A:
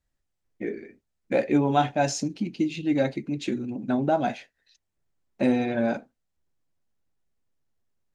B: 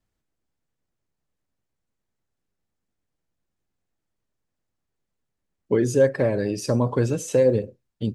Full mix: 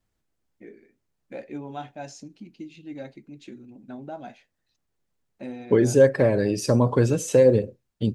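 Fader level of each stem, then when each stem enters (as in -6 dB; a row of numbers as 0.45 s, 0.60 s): -14.0 dB, +2.0 dB; 0.00 s, 0.00 s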